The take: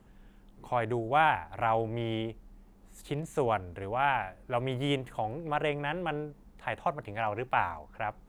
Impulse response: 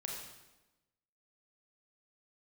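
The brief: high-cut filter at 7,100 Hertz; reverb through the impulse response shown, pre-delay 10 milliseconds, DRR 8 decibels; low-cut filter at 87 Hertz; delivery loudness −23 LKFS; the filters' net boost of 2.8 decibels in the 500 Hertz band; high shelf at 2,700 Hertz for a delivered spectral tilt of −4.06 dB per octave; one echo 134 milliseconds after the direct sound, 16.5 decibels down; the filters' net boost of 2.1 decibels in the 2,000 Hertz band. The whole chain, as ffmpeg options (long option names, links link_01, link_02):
-filter_complex "[0:a]highpass=87,lowpass=7100,equalizer=frequency=500:width_type=o:gain=3.5,equalizer=frequency=2000:width_type=o:gain=4.5,highshelf=frequency=2700:gain=-4.5,aecho=1:1:134:0.15,asplit=2[link_01][link_02];[1:a]atrim=start_sample=2205,adelay=10[link_03];[link_02][link_03]afir=irnorm=-1:irlink=0,volume=-8dB[link_04];[link_01][link_04]amix=inputs=2:normalize=0,volume=6.5dB"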